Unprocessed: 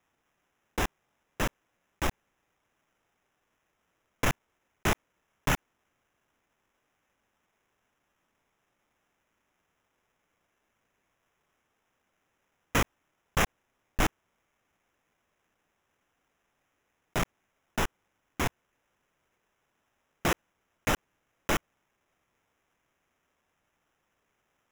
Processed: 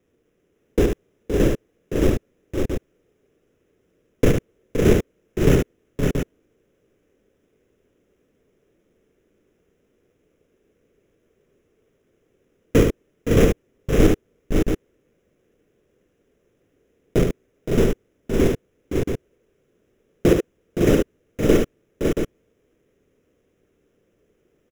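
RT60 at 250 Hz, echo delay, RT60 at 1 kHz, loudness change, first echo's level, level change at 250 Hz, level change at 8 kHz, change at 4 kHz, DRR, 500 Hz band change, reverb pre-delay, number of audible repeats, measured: no reverb, 74 ms, no reverb, +10.0 dB, -6.0 dB, +17.0 dB, +2.5 dB, +2.5 dB, no reverb, +18.0 dB, no reverb, 4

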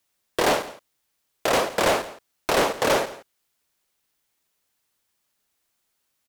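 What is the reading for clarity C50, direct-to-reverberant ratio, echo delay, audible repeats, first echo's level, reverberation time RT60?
no reverb, no reverb, 166 ms, 1, -18.0 dB, no reverb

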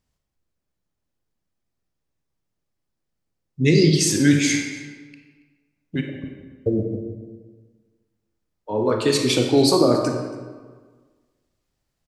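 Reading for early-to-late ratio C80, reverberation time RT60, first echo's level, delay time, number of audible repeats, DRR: 5.5 dB, 1.5 s, -20.5 dB, 279 ms, 1, 2.5 dB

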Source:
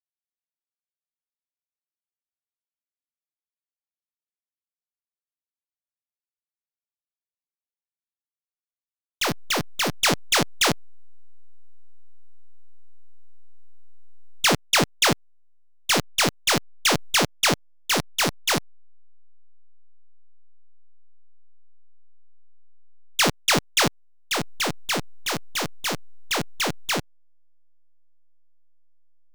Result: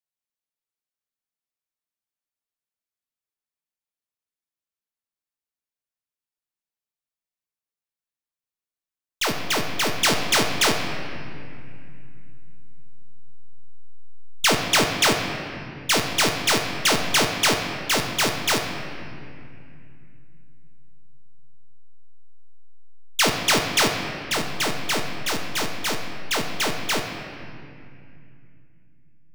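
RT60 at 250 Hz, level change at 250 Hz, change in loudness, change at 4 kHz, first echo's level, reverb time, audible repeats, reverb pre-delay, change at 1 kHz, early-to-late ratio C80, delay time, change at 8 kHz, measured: 3.9 s, +0.5 dB, +1.0 dB, +1.5 dB, no echo, 2.5 s, no echo, 3 ms, +1.5 dB, 6.0 dB, no echo, +1.0 dB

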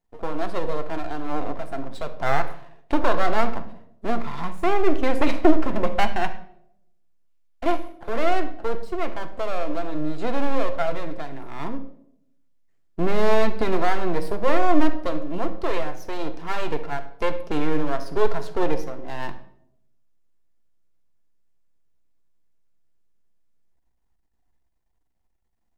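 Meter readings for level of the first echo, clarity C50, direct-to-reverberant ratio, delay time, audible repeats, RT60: no echo, 12.5 dB, 7.0 dB, no echo, no echo, 0.75 s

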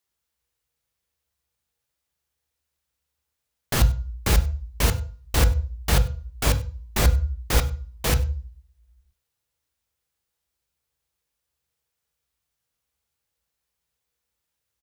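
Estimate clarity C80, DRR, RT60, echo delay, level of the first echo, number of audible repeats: 18.0 dB, 7.5 dB, 0.40 s, 97 ms, -22.5 dB, 1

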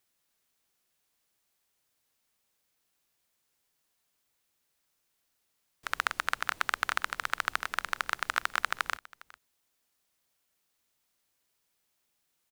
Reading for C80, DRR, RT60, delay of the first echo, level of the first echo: no reverb, no reverb, no reverb, 407 ms, -21.5 dB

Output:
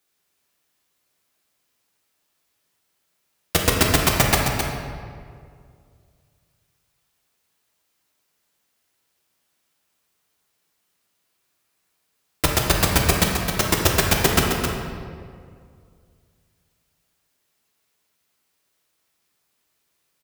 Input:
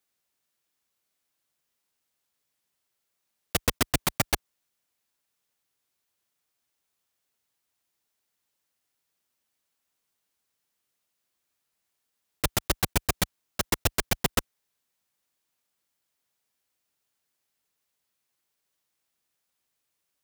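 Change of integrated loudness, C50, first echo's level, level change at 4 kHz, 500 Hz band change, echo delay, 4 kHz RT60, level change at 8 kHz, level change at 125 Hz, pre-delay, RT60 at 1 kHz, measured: +8.0 dB, 0.0 dB, -6.5 dB, +9.0 dB, +10.5 dB, 264 ms, 1.2 s, +8.0 dB, +10.5 dB, 3 ms, 1.9 s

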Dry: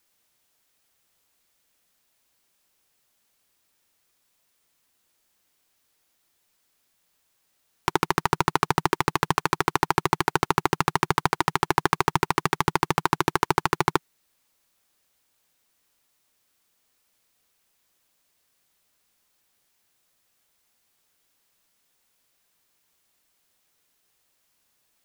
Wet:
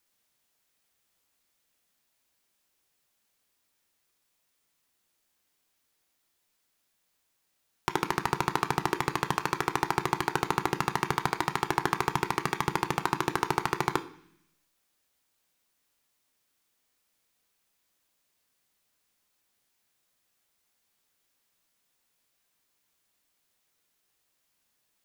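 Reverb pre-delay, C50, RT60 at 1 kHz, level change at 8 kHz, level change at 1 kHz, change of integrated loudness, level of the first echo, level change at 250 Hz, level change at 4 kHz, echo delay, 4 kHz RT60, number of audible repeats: 14 ms, 15.0 dB, 0.70 s, -5.5 dB, -5.5 dB, -5.0 dB, no echo, -5.0 dB, -5.0 dB, no echo, 1.1 s, no echo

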